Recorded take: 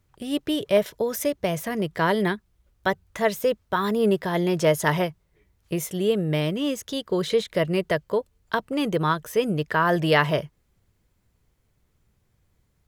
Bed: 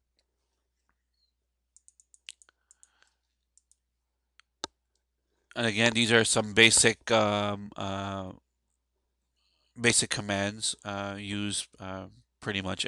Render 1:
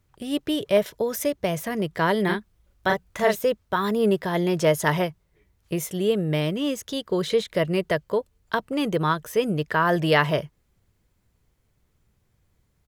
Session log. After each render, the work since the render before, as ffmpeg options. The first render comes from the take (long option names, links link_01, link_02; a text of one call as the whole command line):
ffmpeg -i in.wav -filter_complex "[0:a]asplit=3[link_01][link_02][link_03];[link_01]afade=type=out:start_time=2.28:duration=0.02[link_04];[link_02]asplit=2[link_05][link_06];[link_06]adelay=38,volume=-2.5dB[link_07];[link_05][link_07]amix=inputs=2:normalize=0,afade=type=in:start_time=2.28:duration=0.02,afade=type=out:start_time=3.34:duration=0.02[link_08];[link_03]afade=type=in:start_time=3.34:duration=0.02[link_09];[link_04][link_08][link_09]amix=inputs=3:normalize=0" out.wav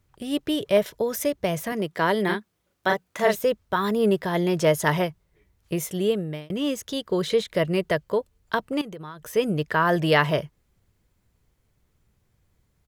ffmpeg -i in.wav -filter_complex "[0:a]asettb=1/sr,asplit=3[link_01][link_02][link_03];[link_01]atrim=end=1.724[link_04];[link_02]atrim=start=1.72:end=3.26,asetpts=PTS-STARTPTS,afade=type=in:duration=0.004:curve=qsin,afade=type=out:start_time=1.536:duration=0.004:curve=qsin,highpass=180[link_05];[link_03]atrim=start=3.256[link_06];[link_04][link_05]acrossfade=duration=0.004:curve1=hsin:curve2=qsin[link_07];[link_07][link_06]acrossfade=duration=0.004:curve1=qsin:curve2=hsin,asettb=1/sr,asplit=3[link_08][link_09][link_10];[link_08]atrim=end=8.814[link_11];[link_09]atrim=start=8.81:end=9.35,asetpts=PTS-STARTPTS,afade=type=in:duration=0.004:curve=qsin,afade=type=out:start_time=0.536:duration=0.004:curve=qsin,acompressor=threshold=-34dB:ratio=12:attack=3.2:release=140:knee=1:detection=peak[link_12];[link_10]atrim=start=9.346[link_13];[link_11][link_12]acrossfade=duration=0.004:curve1=hsin:curve2=qsin[link_14];[link_14][link_13]acrossfade=duration=0.004:curve1=qsin:curve2=hsin,asplit=2[link_15][link_16];[link_15]atrim=end=6.5,asetpts=PTS-STARTPTS,afade=type=out:start_time=6.06:duration=0.44[link_17];[link_16]atrim=start=6.5,asetpts=PTS-STARTPTS,afade=type=in:duration=0.004:curve=hsin[link_18];[link_17][link_18]concat=n=2:v=0:a=1" out.wav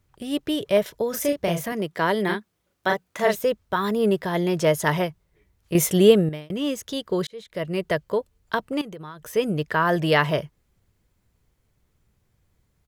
ffmpeg -i in.wav -filter_complex "[0:a]asettb=1/sr,asplit=3[link_01][link_02][link_03];[link_01]atrim=end=1.104[link_04];[link_02]atrim=start=1.1:end=1.66,asetpts=PTS-STARTPTS,afade=type=in:duration=0.004:curve=qsin,afade=type=out:start_time=0.556:duration=0.004:curve=qsin,asplit=2[link_05][link_06];[link_06]adelay=35,volume=-4dB[link_07];[link_05][link_07]amix=inputs=2:normalize=0,atrim=end_sample=24696[link_08];[link_03]atrim=start=1.656[link_09];[link_04][link_08]acrossfade=duration=0.004:curve1=hsin:curve2=qsin[link_10];[link_10][link_09]acrossfade=duration=0.004:curve1=qsin:curve2=hsin,asplit=4[link_11][link_12][link_13][link_14];[link_11]atrim=end=5.752[link_15];[link_12]atrim=start=5.748:end=6.292,asetpts=PTS-STARTPTS,volume=9dB[link_16];[link_13]atrim=start=6.288:end=7.27,asetpts=PTS-STARTPTS,afade=type=out:start_time=0.978:duration=0.004:curve=hsin[link_17];[link_14]atrim=start=7.27,asetpts=PTS-STARTPTS,afade=type=in:duration=0.66[link_18];[link_15][link_16]acrossfade=duration=0.004:curve1=hsin:curve2=hsin[link_19];[link_17][link_18]concat=n=2:v=0:a=1[link_20];[link_19][link_20]acrossfade=duration=0.004:curve1=hsin:curve2=hsin" out.wav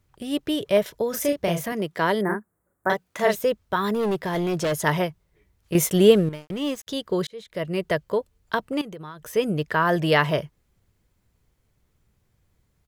ffmpeg -i in.wav -filter_complex "[0:a]asettb=1/sr,asplit=3[link_01][link_02][link_03];[link_01]atrim=end=2.214[link_04];[link_02]atrim=start=2.21:end=2.9,asetpts=PTS-STARTPTS,afade=type=in:duration=0.004:curve=qsin,afade=type=out:start_time=0.686:duration=0.004:curve=qsin,asuperstop=centerf=3800:order=8:qfactor=0.64[link_05];[link_03]atrim=start=2.896[link_06];[link_04][link_05]acrossfade=duration=0.004:curve1=hsin:curve2=qsin[link_07];[link_07][link_06]acrossfade=duration=0.004:curve1=qsin:curve2=hsin,asettb=1/sr,asplit=3[link_08][link_09][link_10];[link_08]atrim=end=3.944[link_11];[link_09]atrim=start=3.94:end=4.73,asetpts=PTS-STARTPTS,afade=type=in:duration=0.004:curve=qsin,afade=type=out:start_time=0.786:duration=0.004:curve=qsin,volume=20.5dB,asoftclip=hard,volume=-20.5dB[link_12];[link_10]atrim=start=4.726[link_13];[link_11][link_12]acrossfade=duration=0.004:curve1=hsin:curve2=qsin[link_14];[link_14][link_13]acrossfade=duration=0.004:curve1=qsin:curve2=hsin,asettb=1/sr,asplit=3[link_15][link_16][link_17];[link_15]atrim=end=5.734[link_18];[link_16]atrim=start=5.73:end=6.87,asetpts=PTS-STARTPTS,afade=type=in:duration=0.004:curve=qsin,afade=type=out:start_time=1.136:duration=0.004:curve=qsin,aeval=exprs='sgn(val(0))*max(abs(val(0))-0.00891,0)':channel_layout=same[link_19];[link_17]atrim=start=6.866[link_20];[link_18][link_19]acrossfade=duration=0.004:curve1=hsin:curve2=qsin[link_21];[link_21][link_20]acrossfade=duration=0.004:curve1=qsin:curve2=hsin" out.wav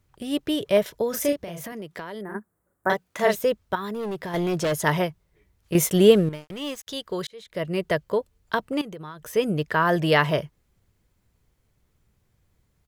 ffmpeg -i in.wav -filter_complex "[0:a]asplit=3[link_01][link_02][link_03];[link_01]afade=type=out:start_time=1.36:duration=0.02[link_04];[link_02]acompressor=threshold=-32dB:ratio=6:attack=3.2:release=140:knee=1:detection=peak,afade=type=in:start_time=1.36:duration=0.02,afade=type=out:start_time=2.34:duration=0.02[link_05];[link_03]afade=type=in:start_time=2.34:duration=0.02[link_06];[link_04][link_05][link_06]amix=inputs=3:normalize=0,asettb=1/sr,asplit=3[link_07][link_08][link_09];[link_07]atrim=end=3.754[link_10];[link_08]atrim=start=3.75:end=4.34,asetpts=PTS-STARTPTS,afade=type=in:duration=0.004:curve=qsin,afade=type=out:start_time=0.586:duration=0.004:curve=qsin,acompressor=threshold=-31dB:ratio=2.5:attack=3.2:release=140:knee=1:detection=peak[link_11];[link_09]atrim=start=4.336[link_12];[link_10][link_11]acrossfade=duration=0.004:curve1=hsin:curve2=qsin[link_13];[link_13][link_12]acrossfade=duration=0.004:curve1=qsin:curve2=hsin,asettb=1/sr,asplit=3[link_14][link_15][link_16];[link_14]atrim=end=6.444[link_17];[link_15]atrim=start=6.44:end=7.45,asetpts=PTS-STARTPTS,afade=type=in:duration=0.004:curve=qsin,afade=type=out:start_time=1.006:duration=0.004:curve=qsin,equalizer=frequency=220:width_type=o:width=2.9:gain=-7[link_18];[link_16]atrim=start=7.446[link_19];[link_17][link_18]acrossfade=duration=0.004:curve1=hsin:curve2=qsin[link_20];[link_20][link_19]acrossfade=duration=0.004:curve1=qsin:curve2=hsin" out.wav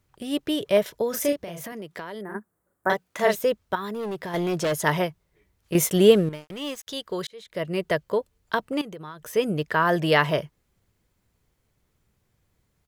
ffmpeg -i in.wav -af "lowshelf=frequency=120:gain=-5.5" out.wav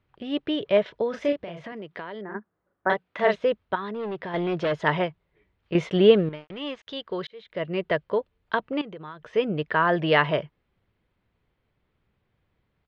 ffmpeg -i in.wav -af "lowpass=frequency=3500:width=0.5412,lowpass=frequency=3500:width=1.3066,lowshelf=frequency=160:gain=-4" out.wav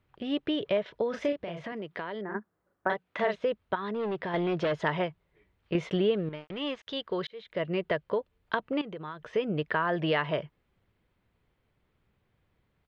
ffmpeg -i in.wav -af "acompressor=threshold=-26dB:ratio=3" out.wav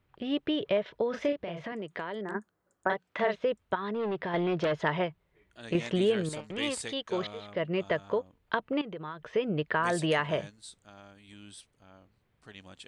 ffmpeg -i in.wav -i bed.wav -filter_complex "[1:a]volume=-17.5dB[link_01];[0:a][link_01]amix=inputs=2:normalize=0" out.wav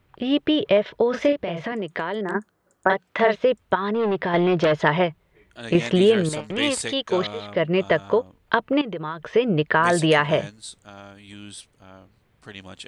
ffmpeg -i in.wav -af "volume=9.5dB" out.wav